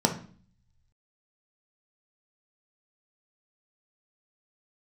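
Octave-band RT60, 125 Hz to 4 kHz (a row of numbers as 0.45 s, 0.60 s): 1.3 s, 0.75 s, 0.45 s, 0.45 s, 0.40 s, 0.45 s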